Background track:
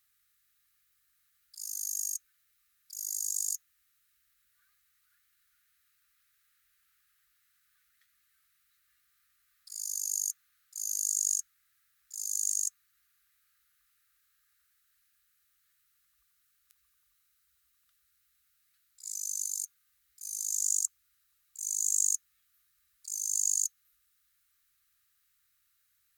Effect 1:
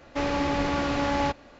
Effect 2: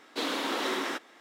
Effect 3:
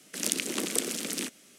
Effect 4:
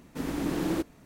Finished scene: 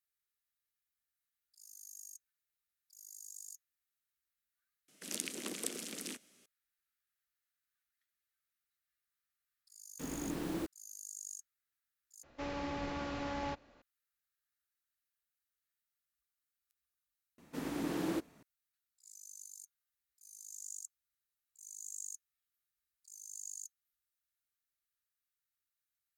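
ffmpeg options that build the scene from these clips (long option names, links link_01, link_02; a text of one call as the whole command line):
ffmpeg -i bed.wav -i cue0.wav -i cue1.wav -i cue2.wav -i cue3.wav -filter_complex "[4:a]asplit=2[link_01][link_02];[0:a]volume=-17.5dB[link_03];[link_01]acrusher=bits=6:mix=0:aa=0.000001[link_04];[link_02]highpass=frequency=180:poles=1[link_05];[link_03]asplit=2[link_06][link_07];[link_06]atrim=end=12.234[link_08];[1:a]atrim=end=1.59,asetpts=PTS-STARTPTS,volume=-13.5dB[link_09];[link_07]atrim=start=13.816[link_10];[3:a]atrim=end=1.58,asetpts=PTS-STARTPTS,volume=-10.5dB,afade=type=in:duration=0.004:curve=hsin,afade=type=out:start_time=1.576:duration=0.004:curve=hsin,adelay=4880[link_11];[link_04]atrim=end=1.05,asetpts=PTS-STARTPTS,volume=-9.5dB,afade=type=in:duration=0.004:curve=hsin,afade=type=out:start_time=1.046:duration=0.004:curve=hsin,adelay=9840[link_12];[link_05]atrim=end=1.05,asetpts=PTS-STARTPTS,volume=-5.5dB,afade=type=in:duration=0.004:curve=hsin,afade=type=out:start_time=1.046:duration=0.004:curve=hsin,adelay=17380[link_13];[link_08][link_09]acrossfade=duration=0.004:curve1=hsin:curve2=hsin[link_14];[link_14][link_10]acrossfade=duration=0.004:curve1=hsin:curve2=hsin[link_15];[link_15][link_11][link_12][link_13]amix=inputs=4:normalize=0" out.wav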